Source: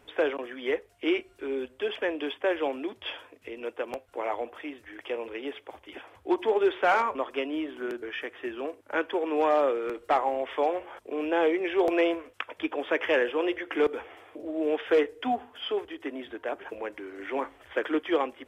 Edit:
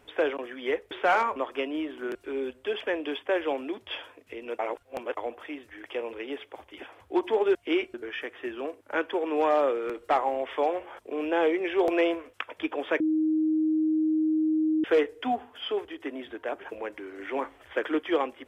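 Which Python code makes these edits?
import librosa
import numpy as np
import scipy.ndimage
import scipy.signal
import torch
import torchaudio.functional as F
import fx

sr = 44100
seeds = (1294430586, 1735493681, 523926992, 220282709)

y = fx.edit(x, sr, fx.swap(start_s=0.91, length_s=0.39, other_s=6.7, other_length_s=1.24),
    fx.reverse_span(start_s=3.74, length_s=0.58),
    fx.bleep(start_s=13.0, length_s=1.84, hz=313.0, db=-21.5), tone=tone)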